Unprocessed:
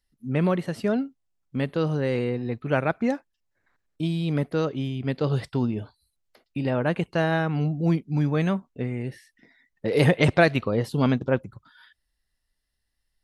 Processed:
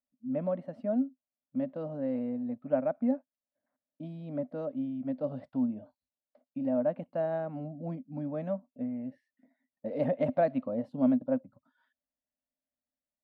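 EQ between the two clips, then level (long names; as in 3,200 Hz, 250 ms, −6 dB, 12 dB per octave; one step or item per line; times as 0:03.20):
pair of resonant band-passes 390 Hz, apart 1.2 octaves
low-shelf EQ 410 Hz −3 dB
+2.0 dB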